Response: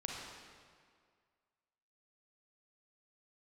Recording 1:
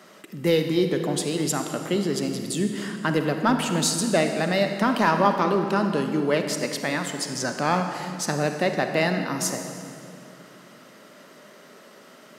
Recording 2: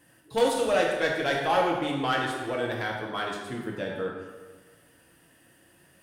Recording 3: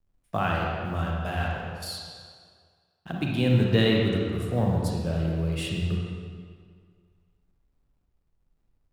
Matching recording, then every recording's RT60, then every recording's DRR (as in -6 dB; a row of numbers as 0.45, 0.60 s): 3; 2.7, 1.4, 2.0 s; 5.5, -2.0, -2.0 dB